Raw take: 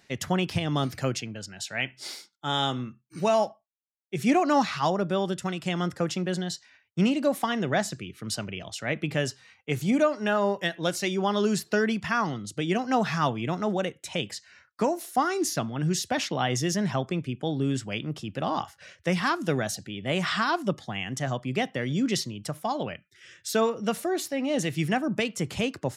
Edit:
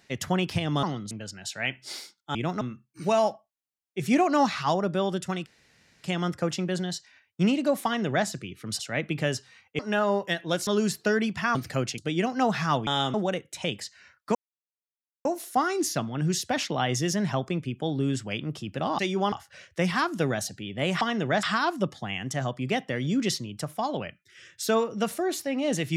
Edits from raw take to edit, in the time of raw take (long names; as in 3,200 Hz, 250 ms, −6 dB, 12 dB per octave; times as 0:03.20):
0:00.83–0:01.26: swap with 0:12.22–0:12.50
0:02.50–0:02.77: swap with 0:13.39–0:13.65
0:05.62: splice in room tone 0.58 s
0:07.43–0:07.85: duplicate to 0:20.29
0:08.37–0:08.72: remove
0:09.72–0:10.13: remove
0:11.01–0:11.34: move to 0:18.60
0:14.86: splice in silence 0.90 s